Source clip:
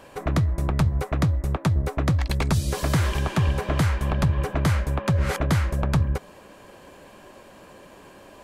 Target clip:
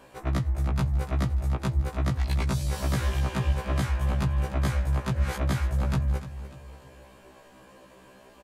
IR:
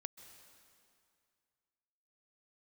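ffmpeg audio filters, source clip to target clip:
-af "aecho=1:1:295|590|885|1180:0.211|0.0909|0.0391|0.0168,afftfilt=real='re*1.73*eq(mod(b,3),0)':imag='im*1.73*eq(mod(b,3),0)':win_size=2048:overlap=0.75,volume=-3dB"

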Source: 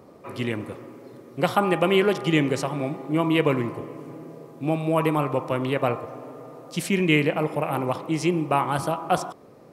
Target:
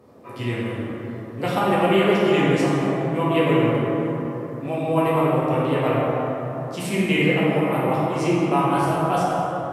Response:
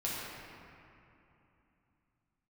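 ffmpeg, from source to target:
-filter_complex "[1:a]atrim=start_sample=2205,asetrate=31752,aresample=44100[a];[0:a][a]afir=irnorm=-1:irlink=0,volume=-4.5dB"

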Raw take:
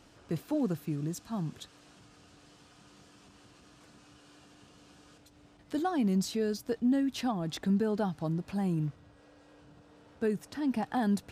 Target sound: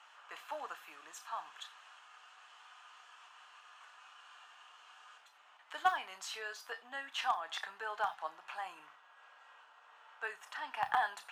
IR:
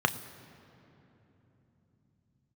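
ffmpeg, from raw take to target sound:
-filter_complex "[0:a]highpass=f=920:w=0.5412,highpass=f=920:w=1.3066,highshelf=f=4.1k:g=-6.5,asplit=2[a][b];[b]acrusher=bits=4:mix=0:aa=0.000001,volume=-9dB[c];[a][c]amix=inputs=2:normalize=0[d];[1:a]atrim=start_sample=2205,atrim=end_sample=4410[e];[d][e]afir=irnorm=-1:irlink=0,volume=-5dB"

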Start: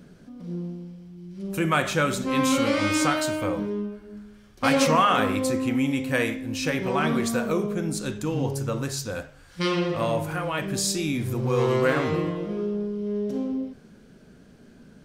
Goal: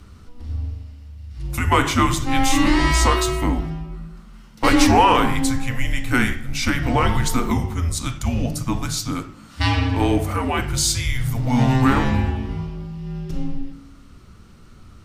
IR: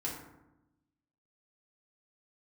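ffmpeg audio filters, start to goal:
-filter_complex "[0:a]acontrast=40,bandreject=f=68.93:t=h:w=4,bandreject=f=137.86:t=h:w=4,bandreject=f=206.79:t=h:w=4,bandreject=f=275.72:t=h:w=4,bandreject=f=344.65:t=h:w=4,bandreject=f=413.58:t=h:w=4,afreqshift=-250,asplit=2[a][b];[1:a]atrim=start_sample=2205[c];[b][c]afir=irnorm=-1:irlink=0,volume=-17dB[d];[a][d]amix=inputs=2:normalize=0"

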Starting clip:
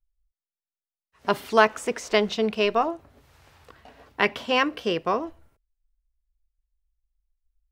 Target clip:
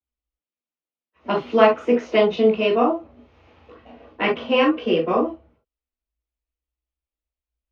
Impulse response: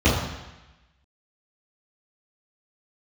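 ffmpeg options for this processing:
-filter_complex "[0:a]acrossover=split=190 5100:gain=0.112 1 0.0631[a][b][c];[a][b][c]amix=inputs=3:normalize=0[d];[1:a]atrim=start_sample=2205,atrim=end_sample=3528[e];[d][e]afir=irnorm=-1:irlink=0,volume=-16dB"

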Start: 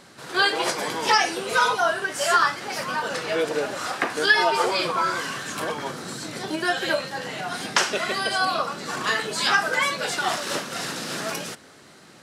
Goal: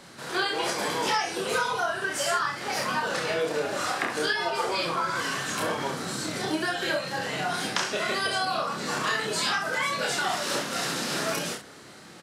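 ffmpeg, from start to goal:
-filter_complex "[0:a]acrossover=split=140[a][b];[b]acompressor=threshold=-26dB:ratio=6[c];[a][c]amix=inputs=2:normalize=0,aecho=1:1:29|66:0.668|0.376"

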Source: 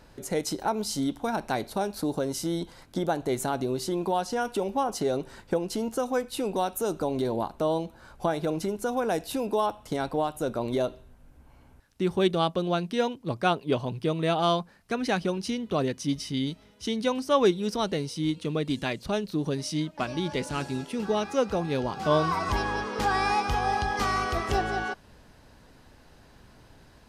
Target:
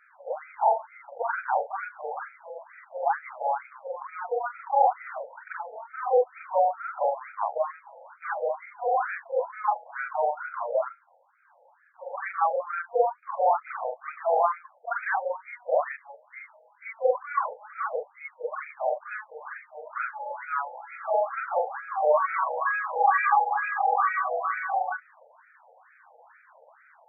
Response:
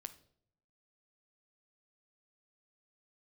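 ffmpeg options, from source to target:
-filter_complex "[0:a]afftfilt=real='re':imag='-im':win_size=4096:overlap=0.75,asplit=2[a][b];[b]asoftclip=type=hard:threshold=-30dB,volume=-5dB[c];[a][c]amix=inputs=2:normalize=0,aphaser=in_gain=1:out_gain=1:delay=2.8:decay=0.29:speed=0.25:type=triangular,afftfilt=real='re*between(b*sr/1024,620*pow(1800/620,0.5+0.5*sin(2*PI*2.2*pts/sr))/1.41,620*pow(1800/620,0.5+0.5*sin(2*PI*2.2*pts/sr))*1.41)':imag='im*between(b*sr/1024,620*pow(1800/620,0.5+0.5*sin(2*PI*2.2*pts/sr))/1.41,620*pow(1800/620,0.5+0.5*sin(2*PI*2.2*pts/sr))*1.41)':win_size=1024:overlap=0.75,volume=8.5dB"

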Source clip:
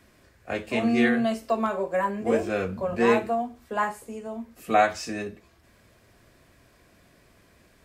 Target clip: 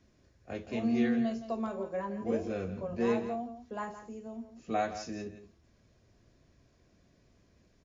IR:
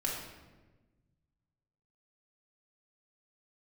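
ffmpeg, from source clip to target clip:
-filter_complex "[0:a]equalizer=f=1.7k:w=0.35:g=-10.5,asplit=2[a][b];[b]aecho=0:1:168:0.251[c];[a][c]amix=inputs=2:normalize=0,volume=-4.5dB" -ar 22050 -c:a mp2 -b:a 96k

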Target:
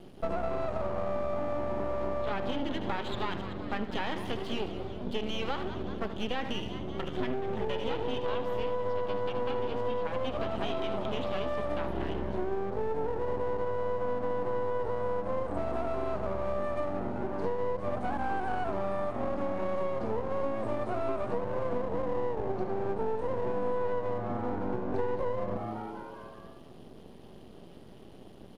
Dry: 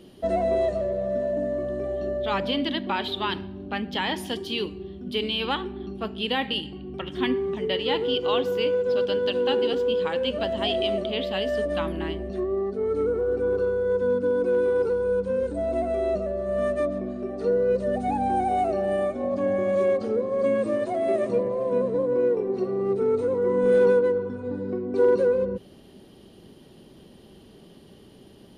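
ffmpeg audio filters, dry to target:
-filter_complex "[0:a]asplit=2[a][b];[b]aecho=0:1:75:0.237[c];[a][c]amix=inputs=2:normalize=0,aeval=exprs='max(val(0),0)':c=same,highshelf=f=2.2k:g=-8,acrossover=split=3800[d][e];[e]acompressor=threshold=-57dB:ratio=4:attack=1:release=60[f];[d][f]amix=inputs=2:normalize=0,asplit=2[g][h];[h]asplit=6[i][j][k][l][m][n];[i]adelay=190,afreqshift=110,volume=-15.5dB[o];[j]adelay=380,afreqshift=220,volume=-19.7dB[p];[k]adelay=570,afreqshift=330,volume=-23.8dB[q];[l]adelay=760,afreqshift=440,volume=-28dB[r];[m]adelay=950,afreqshift=550,volume=-32.1dB[s];[n]adelay=1140,afreqshift=660,volume=-36.3dB[t];[o][p][q][r][s][t]amix=inputs=6:normalize=0[u];[g][u]amix=inputs=2:normalize=0,acompressor=threshold=-30dB:ratio=6,volume=3.5dB"

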